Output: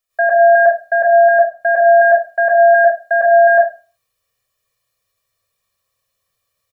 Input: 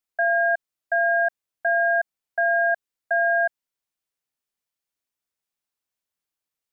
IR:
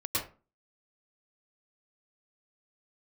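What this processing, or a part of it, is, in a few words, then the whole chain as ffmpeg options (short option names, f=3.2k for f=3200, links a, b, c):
microphone above a desk: -filter_complex "[0:a]aecho=1:1:1.7:0.88[a];[1:a]atrim=start_sample=2205[b];[a][b]afir=irnorm=-1:irlink=0,asplit=3[c][d][e];[c]afade=t=out:st=0.94:d=0.02[f];[d]adynamicequalizer=threshold=0.0224:dfrequency=1600:dqfactor=0.7:tfrequency=1600:tqfactor=0.7:attack=5:release=100:ratio=0.375:range=3.5:mode=cutabove:tftype=highshelf,afade=t=in:st=0.94:d=0.02,afade=t=out:st=1.68:d=0.02[g];[e]afade=t=in:st=1.68:d=0.02[h];[f][g][h]amix=inputs=3:normalize=0,volume=7dB"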